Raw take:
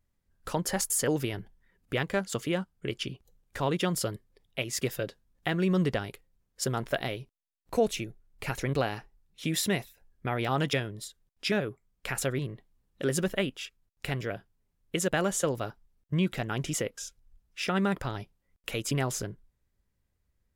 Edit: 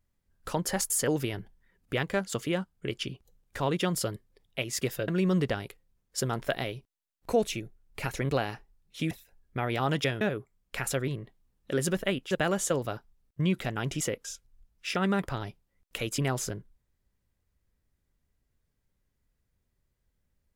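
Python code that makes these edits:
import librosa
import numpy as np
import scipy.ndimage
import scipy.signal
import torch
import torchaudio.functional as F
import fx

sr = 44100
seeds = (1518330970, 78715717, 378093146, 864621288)

y = fx.edit(x, sr, fx.cut(start_s=5.08, length_s=0.44),
    fx.cut(start_s=9.55, length_s=0.25),
    fx.cut(start_s=10.9, length_s=0.62),
    fx.cut(start_s=13.62, length_s=1.42), tone=tone)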